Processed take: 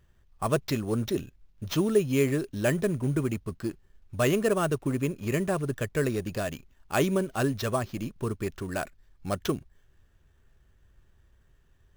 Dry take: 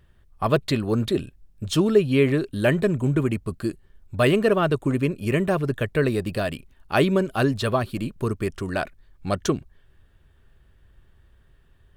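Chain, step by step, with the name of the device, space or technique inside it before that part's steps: early companding sampler (sample-rate reducer 9.4 kHz, jitter 0%; companded quantiser 8-bit); trim -5.5 dB

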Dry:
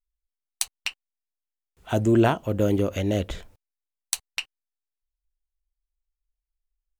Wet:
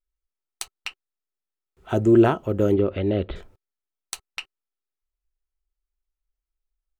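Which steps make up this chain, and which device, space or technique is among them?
2.74–3.36 s: Chebyshev low-pass 4.3 kHz, order 5; inside a helmet (treble shelf 3.4 kHz -8.5 dB; small resonant body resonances 380/1300 Hz, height 9 dB)

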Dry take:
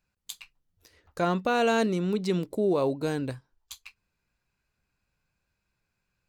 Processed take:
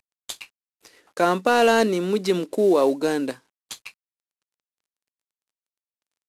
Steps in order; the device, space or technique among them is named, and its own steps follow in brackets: early wireless headset (high-pass 230 Hz 24 dB/octave; CVSD coder 64 kbps); trim +7.5 dB

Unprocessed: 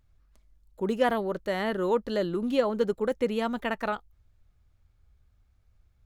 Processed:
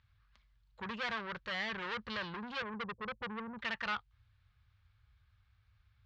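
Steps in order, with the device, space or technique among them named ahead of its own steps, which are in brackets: 2.62–3.59 s: steep low-pass 550 Hz 48 dB/octave; scooped metal amplifier (valve stage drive 34 dB, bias 0.45; cabinet simulation 77–4100 Hz, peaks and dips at 110 Hz +9 dB, 220 Hz +7 dB, 330 Hz +4 dB, 650 Hz -5 dB, 1.1 kHz +4 dB, 1.6 kHz +4 dB; amplifier tone stack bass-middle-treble 10-0-10); trim +9.5 dB

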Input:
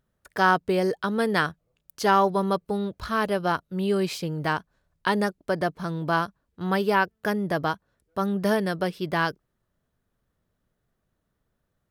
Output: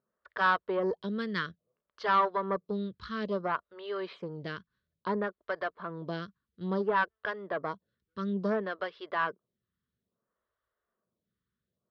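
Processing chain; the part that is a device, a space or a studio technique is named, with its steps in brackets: vibe pedal into a guitar amplifier (lamp-driven phase shifter 0.59 Hz; valve stage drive 16 dB, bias 0.55; cabinet simulation 95–4100 Hz, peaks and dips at 99 Hz -7 dB, 150 Hz -8 dB, 290 Hz -9 dB, 800 Hz -8 dB, 1.1 kHz +5 dB, 2.5 kHz -8 dB)

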